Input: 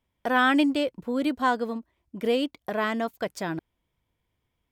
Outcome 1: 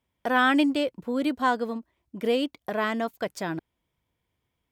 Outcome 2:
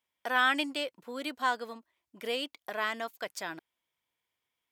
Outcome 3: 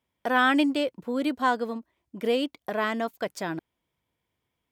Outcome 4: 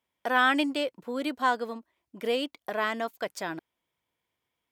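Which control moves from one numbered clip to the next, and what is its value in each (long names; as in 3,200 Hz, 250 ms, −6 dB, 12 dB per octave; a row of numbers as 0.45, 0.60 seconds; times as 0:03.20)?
high-pass filter, corner frequency: 59, 1,500, 160, 530 Hertz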